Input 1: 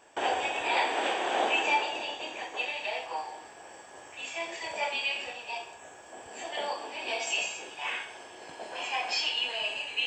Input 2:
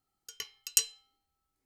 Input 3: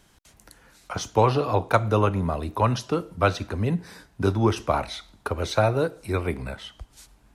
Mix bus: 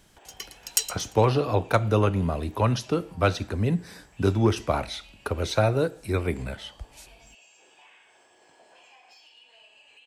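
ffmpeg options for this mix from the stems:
ffmpeg -i stem1.wav -i stem2.wav -i stem3.wav -filter_complex "[0:a]highshelf=frequency=10000:gain=9.5,acompressor=threshold=-38dB:ratio=12,asoftclip=type=tanh:threshold=-32dB,volume=-13dB,asplit=2[link_01][link_02];[link_02]volume=-11dB[link_03];[1:a]aphaser=in_gain=1:out_gain=1:delay=3.9:decay=0.63:speed=1.6:type=triangular,volume=0dB,asplit=2[link_04][link_05];[link_05]volume=-14.5dB[link_06];[2:a]equalizer=frequency=1000:width_type=o:width=1.1:gain=-5,volume=0.5dB[link_07];[link_03][link_06]amix=inputs=2:normalize=0,aecho=0:1:115|230|345|460|575:1|0.33|0.109|0.0359|0.0119[link_08];[link_01][link_04][link_07][link_08]amix=inputs=4:normalize=0,asoftclip=type=hard:threshold=-10dB" out.wav

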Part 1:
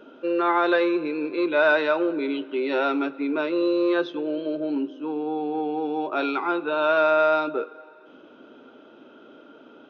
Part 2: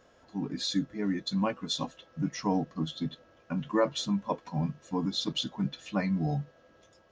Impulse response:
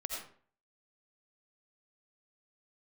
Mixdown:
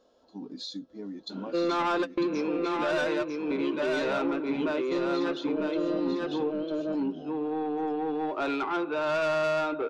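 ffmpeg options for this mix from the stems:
-filter_complex "[0:a]highpass=100,highshelf=frequency=2300:gain=-4.5,asoftclip=type=tanh:threshold=-22.5dB,adelay=1300,volume=2dB,asplit=2[link_01][link_02];[link_02]volume=-3dB[link_03];[1:a]equalizer=frequency=125:width_type=o:width=1:gain=-10,equalizer=frequency=250:width_type=o:width=1:gain=8,equalizer=frequency=500:width_type=o:width=1:gain=8,equalizer=frequency=1000:width_type=o:width=1:gain=5,equalizer=frequency=2000:width_type=o:width=1:gain=-10,equalizer=frequency=4000:width_type=o:width=1:gain=11,acompressor=threshold=-27dB:ratio=3,volume=-10dB,asplit=3[link_04][link_05][link_06];[link_05]volume=-4.5dB[link_07];[link_06]apad=whole_len=493795[link_08];[link_01][link_08]sidechaingate=range=-33dB:threshold=-54dB:ratio=16:detection=peak[link_09];[link_03][link_07]amix=inputs=2:normalize=0,aecho=0:1:949:1[link_10];[link_09][link_04][link_10]amix=inputs=3:normalize=0,alimiter=limit=-21dB:level=0:latency=1:release=329"

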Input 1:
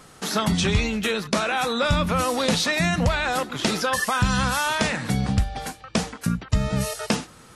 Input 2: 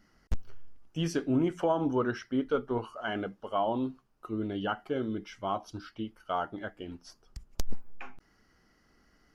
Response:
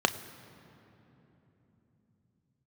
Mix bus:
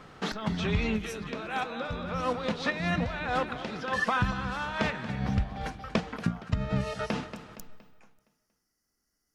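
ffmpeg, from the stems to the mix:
-filter_complex "[0:a]lowpass=3100,acompressor=threshold=-22dB:ratio=6,volume=-0.5dB,asplit=2[link_01][link_02];[link_02]volume=-15dB[link_03];[1:a]asoftclip=type=tanh:threshold=-20dB,aexciter=amount=8.1:drive=5.6:freq=5300,volume=-18dB,asplit=2[link_04][link_05];[link_05]apad=whole_len=333193[link_06];[link_01][link_06]sidechaincompress=threshold=-58dB:ratio=5:attack=23:release=113[link_07];[link_03]aecho=0:1:233|466|699|932|1165|1398:1|0.42|0.176|0.0741|0.0311|0.0131[link_08];[link_07][link_04][link_08]amix=inputs=3:normalize=0"

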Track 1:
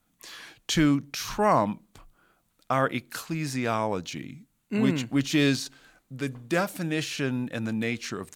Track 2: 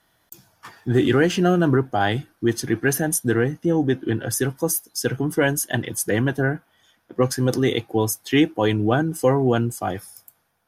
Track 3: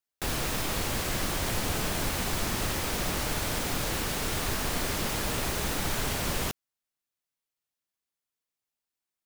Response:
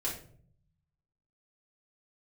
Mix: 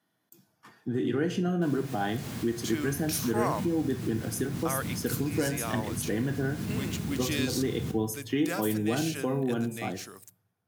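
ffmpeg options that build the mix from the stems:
-filter_complex "[0:a]aemphasis=mode=production:type=bsi,adelay=1950,volume=-12.5dB,afade=type=in:start_time=2.68:duration=0.22:silence=0.446684[link_01];[1:a]volume=-16dB,asplit=3[link_02][link_03][link_04];[link_03]volume=-10.5dB[link_05];[2:a]asubboost=boost=8.5:cutoff=200,adelay=1400,volume=-17dB,asplit=2[link_06][link_07];[link_07]volume=-9dB[link_08];[link_04]apad=whole_len=469669[link_09];[link_06][link_09]sidechaincompress=threshold=-46dB:ratio=8:attack=16:release=118[link_10];[link_02][link_10]amix=inputs=2:normalize=0,equalizer=frequency=230:width=0.91:gain=11,acompressor=threshold=-32dB:ratio=3,volume=0dB[link_11];[3:a]atrim=start_sample=2205[link_12];[link_05][link_08]amix=inputs=2:normalize=0[link_13];[link_13][link_12]afir=irnorm=-1:irlink=0[link_14];[link_01][link_11][link_14]amix=inputs=3:normalize=0,highpass=frequency=100:width=0.5412,highpass=frequency=100:width=1.3066,dynaudnorm=framelen=100:gausssize=17:maxgain=4dB"

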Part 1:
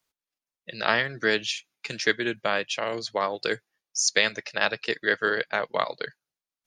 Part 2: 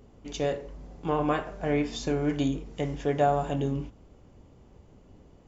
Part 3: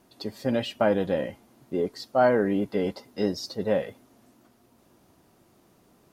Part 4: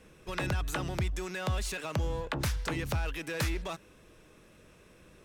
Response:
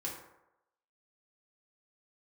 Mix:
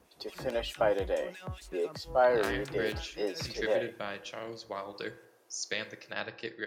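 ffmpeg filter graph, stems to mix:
-filter_complex "[0:a]lowshelf=frequency=260:gain=9,adelay=1550,volume=-15.5dB,asplit=2[link_01][link_02];[link_02]volume=-7.5dB[link_03];[2:a]highpass=frequency=360:width=0.5412,highpass=frequency=360:width=1.3066,volume=-4dB[link_04];[3:a]alimiter=level_in=1.5dB:limit=-24dB:level=0:latency=1:release=447,volume=-1.5dB,acrossover=split=1700[link_05][link_06];[link_05]aeval=exprs='val(0)*(1-1/2+1/2*cos(2*PI*4.7*n/s))':channel_layout=same[link_07];[link_06]aeval=exprs='val(0)*(1-1/2-1/2*cos(2*PI*4.7*n/s))':channel_layout=same[link_08];[link_07][link_08]amix=inputs=2:normalize=0,volume=-5dB[link_09];[4:a]atrim=start_sample=2205[link_10];[link_03][link_10]afir=irnorm=-1:irlink=0[link_11];[link_01][link_04][link_09][link_11]amix=inputs=4:normalize=0,highpass=47"

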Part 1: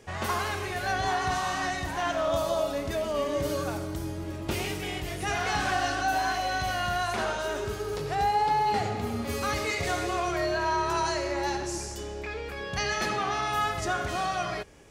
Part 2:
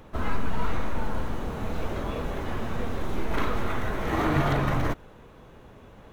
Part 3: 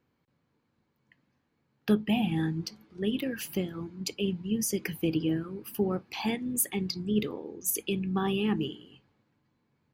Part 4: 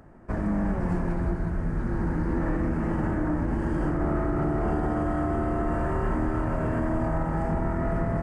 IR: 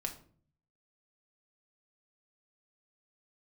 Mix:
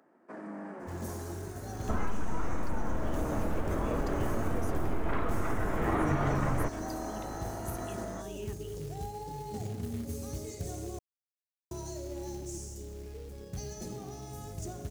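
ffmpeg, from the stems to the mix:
-filter_complex "[0:a]firequalizer=gain_entry='entry(140,0);entry(1300,-28);entry(2700,-27);entry(6300,-4)':delay=0.05:min_phase=1,acrusher=bits=4:mode=log:mix=0:aa=0.000001,adelay=800,volume=-2.5dB,asplit=3[link_01][link_02][link_03];[link_01]atrim=end=10.99,asetpts=PTS-STARTPTS,afade=type=out:start_time=10.986:duration=0.004:curve=hsin[link_04];[link_02]atrim=start=10.99:end=11.71,asetpts=PTS-STARTPTS,volume=0[link_05];[link_03]atrim=start=11.71,asetpts=PTS-STARTPTS,afade=type=in:duration=0.004:curve=hsin[link_06];[link_04][link_05][link_06]concat=n=3:v=0:a=1[link_07];[1:a]lowpass=2000,adelay=1750,volume=0.5dB[link_08];[2:a]volume=-17.5dB[link_09];[3:a]highpass=frequency=250:width=0.5412,highpass=frequency=250:width=1.3066,volume=-10dB[link_10];[link_07][link_08][link_09][link_10]amix=inputs=4:normalize=0,acompressor=threshold=-26dB:ratio=3"

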